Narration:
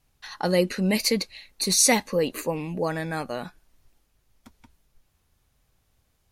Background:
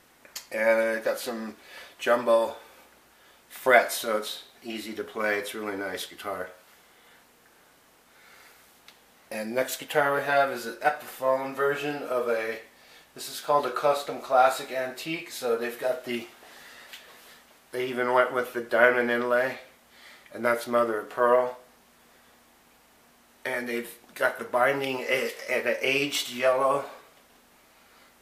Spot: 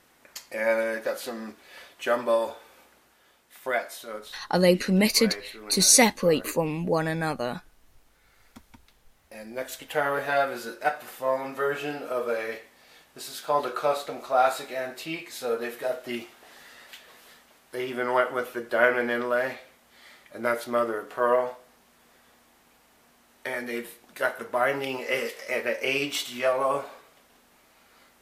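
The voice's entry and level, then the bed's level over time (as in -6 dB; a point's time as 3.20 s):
4.10 s, +2.0 dB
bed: 2.90 s -2 dB
3.87 s -10 dB
9.30 s -10 dB
10.10 s -1.5 dB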